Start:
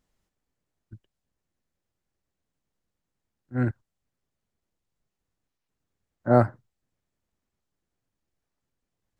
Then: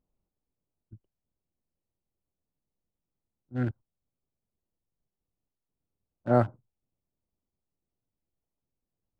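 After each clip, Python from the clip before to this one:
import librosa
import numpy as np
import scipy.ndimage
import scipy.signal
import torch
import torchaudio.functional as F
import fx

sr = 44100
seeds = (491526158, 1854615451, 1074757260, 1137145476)

y = fx.wiener(x, sr, points=25)
y = y * librosa.db_to_amplitude(-4.0)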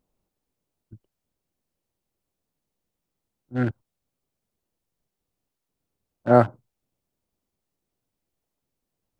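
y = fx.low_shelf(x, sr, hz=190.0, db=-7.0)
y = y * librosa.db_to_amplitude(8.5)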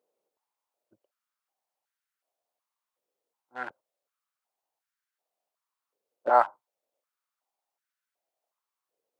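y = fx.filter_held_highpass(x, sr, hz=2.7, low_hz=480.0, high_hz=1500.0)
y = y * librosa.db_to_amplitude(-5.0)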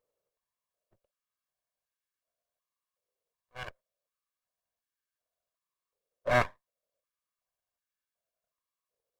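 y = fx.lower_of_two(x, sr, delay_ms=1.8)
y = y * librosa.db_to_amplitude(-3.0)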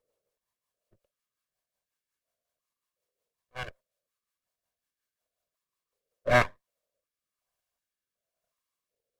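y = fx.rotary_switch(x, sr, hz=5.5, then_hz=1.0, switch_at_s=5.98)
y = y * librosa.db_to_amplitude(5.5)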